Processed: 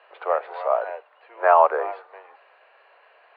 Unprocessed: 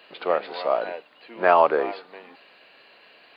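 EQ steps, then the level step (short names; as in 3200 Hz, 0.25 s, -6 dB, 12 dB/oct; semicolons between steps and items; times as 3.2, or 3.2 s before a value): Bessel high-pass 800 Hz, order 8; LPF 1200 Hz 12 dB/oct; air absorption 65 m; +6.5 dB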